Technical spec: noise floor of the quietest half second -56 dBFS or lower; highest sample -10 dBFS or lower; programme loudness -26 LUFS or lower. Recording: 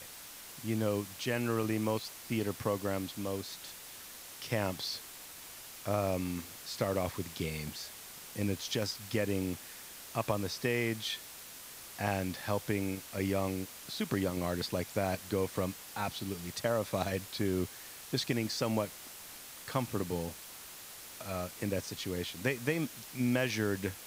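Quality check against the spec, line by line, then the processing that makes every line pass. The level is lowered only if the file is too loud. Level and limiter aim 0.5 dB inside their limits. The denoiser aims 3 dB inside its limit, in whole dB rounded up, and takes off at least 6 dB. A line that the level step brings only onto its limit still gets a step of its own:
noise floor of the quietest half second -49 dBFS: fail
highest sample -17.0 dBFS: OK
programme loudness -35.5 LUFS: OK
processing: denoiser 10 dB, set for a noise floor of -49 dBFS

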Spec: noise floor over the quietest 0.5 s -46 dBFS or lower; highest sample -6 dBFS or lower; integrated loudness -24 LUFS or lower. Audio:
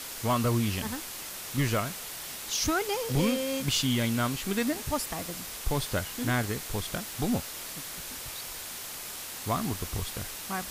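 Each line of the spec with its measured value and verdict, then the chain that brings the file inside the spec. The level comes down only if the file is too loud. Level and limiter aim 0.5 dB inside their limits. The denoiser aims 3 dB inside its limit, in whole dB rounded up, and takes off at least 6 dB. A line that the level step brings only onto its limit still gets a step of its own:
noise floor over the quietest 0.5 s -40 dBFS: fail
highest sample -15.5 dBFS: OK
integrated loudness -30.5 LUFS: OK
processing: denoiser 9 dB, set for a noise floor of -40 dBFS

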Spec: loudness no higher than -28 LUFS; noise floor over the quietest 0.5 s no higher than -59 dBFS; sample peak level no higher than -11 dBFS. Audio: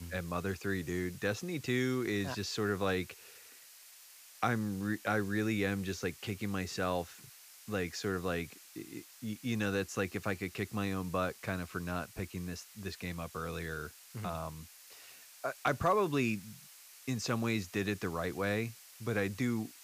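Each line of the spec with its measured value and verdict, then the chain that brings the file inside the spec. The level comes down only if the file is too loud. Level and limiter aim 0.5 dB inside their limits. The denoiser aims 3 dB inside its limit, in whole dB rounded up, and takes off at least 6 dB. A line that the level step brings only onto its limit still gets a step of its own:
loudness -36.0 LUFS: OK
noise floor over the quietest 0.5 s -56 dBFS: fail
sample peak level -17.5 dBFS: OK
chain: denoiser 6 dB, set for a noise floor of -56 dBFS

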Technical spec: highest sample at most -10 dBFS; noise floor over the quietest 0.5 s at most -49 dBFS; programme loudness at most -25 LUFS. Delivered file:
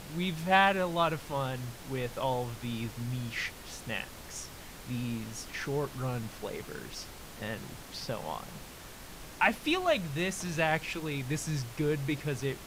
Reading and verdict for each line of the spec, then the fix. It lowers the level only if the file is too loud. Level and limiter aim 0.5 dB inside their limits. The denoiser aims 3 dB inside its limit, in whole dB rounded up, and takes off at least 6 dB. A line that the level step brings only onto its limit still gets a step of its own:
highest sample -12.0 dBFS: OK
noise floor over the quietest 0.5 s -47 dBFS: fail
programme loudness -33.0 LUFS: OK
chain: denoiser 6 dB, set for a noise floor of -47 dBFS

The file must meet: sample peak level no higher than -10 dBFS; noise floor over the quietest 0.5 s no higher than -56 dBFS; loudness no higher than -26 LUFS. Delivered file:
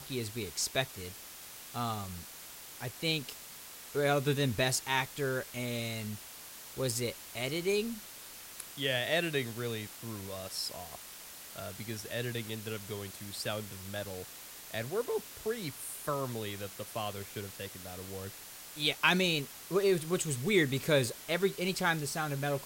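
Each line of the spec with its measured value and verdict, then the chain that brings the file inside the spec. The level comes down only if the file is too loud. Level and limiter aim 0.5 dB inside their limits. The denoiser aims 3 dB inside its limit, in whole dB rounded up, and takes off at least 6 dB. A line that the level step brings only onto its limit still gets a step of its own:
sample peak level -11.0 dBFS: OK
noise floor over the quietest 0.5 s -49 dBFS: fail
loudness -34.0 LUFS: OK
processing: denoiser 10 dB, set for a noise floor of -49 dBFS

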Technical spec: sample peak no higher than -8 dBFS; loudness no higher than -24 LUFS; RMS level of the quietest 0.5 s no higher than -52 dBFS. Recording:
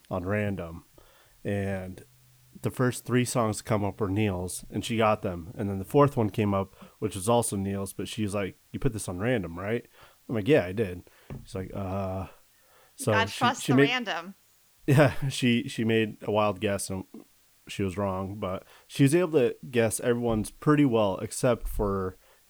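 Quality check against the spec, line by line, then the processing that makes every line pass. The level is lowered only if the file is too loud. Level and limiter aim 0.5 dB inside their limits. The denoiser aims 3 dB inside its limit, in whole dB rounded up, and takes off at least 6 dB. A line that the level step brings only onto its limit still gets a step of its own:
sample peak -7.5 dBFS: fail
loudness -27.5 LUFS: OK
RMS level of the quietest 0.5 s -62 dBFS: OK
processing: limiter -8.5 dBFS

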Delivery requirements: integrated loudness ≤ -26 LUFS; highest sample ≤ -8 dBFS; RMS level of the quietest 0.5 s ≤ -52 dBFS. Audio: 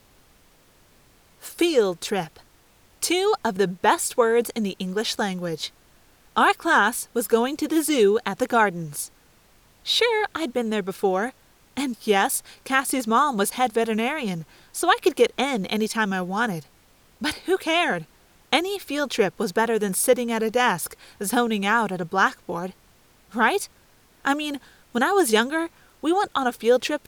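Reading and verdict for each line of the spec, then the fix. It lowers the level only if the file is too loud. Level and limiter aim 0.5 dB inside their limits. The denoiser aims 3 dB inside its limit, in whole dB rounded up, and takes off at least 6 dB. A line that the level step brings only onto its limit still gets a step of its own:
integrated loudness -23.0 LUFS: fail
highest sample -5.5 dBFS: fail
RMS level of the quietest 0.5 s -57 dBFS: OK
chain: gain -3.5 dB

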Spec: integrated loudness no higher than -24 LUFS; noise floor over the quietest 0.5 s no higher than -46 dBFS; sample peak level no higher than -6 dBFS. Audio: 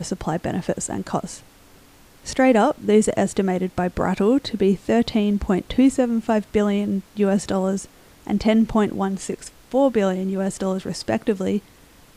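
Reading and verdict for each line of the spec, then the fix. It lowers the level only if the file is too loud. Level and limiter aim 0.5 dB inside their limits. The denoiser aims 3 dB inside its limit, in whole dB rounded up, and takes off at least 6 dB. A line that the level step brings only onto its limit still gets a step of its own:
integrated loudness -21.5 LUFS: fail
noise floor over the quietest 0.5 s -50 dBFS: OK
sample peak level -4.5 dBFS: fail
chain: gain -3 dB

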